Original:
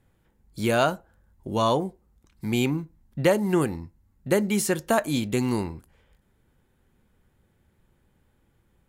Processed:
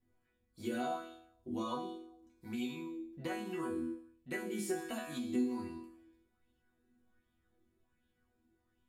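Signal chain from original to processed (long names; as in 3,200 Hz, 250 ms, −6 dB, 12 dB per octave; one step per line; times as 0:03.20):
resonators tuned to a chord B3 sus4, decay 0.63 s
on a send at −8 dB: convolution reverb RT60 0.45 s, pre-delay 3 ms
on the sum: downward compressor 2.5 to 1, threshold −47 dBFS, peak gain reduction 8.5 dB
auto-filter bell 1.3 Hz 270–3,400 Hz +9 dB
level +8 dB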